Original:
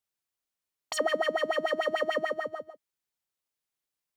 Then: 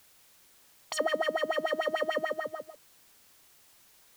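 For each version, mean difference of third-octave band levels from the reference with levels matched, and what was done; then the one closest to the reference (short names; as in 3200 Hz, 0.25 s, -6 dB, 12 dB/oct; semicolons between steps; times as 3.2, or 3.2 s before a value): 2.0 dB: added noise white -59 dBFS; gain -1.5 dB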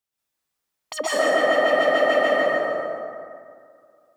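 7.5 dB: plate-style reverb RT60 2.3 s, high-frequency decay 0.5×, pre-delay 0.11 s, DRR -9 dB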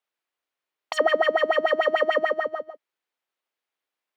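3.5 dB: three-band isolator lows -20 dB, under 280 Hz, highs -14 dB, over 3600 Hz; gain +7.5 dB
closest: first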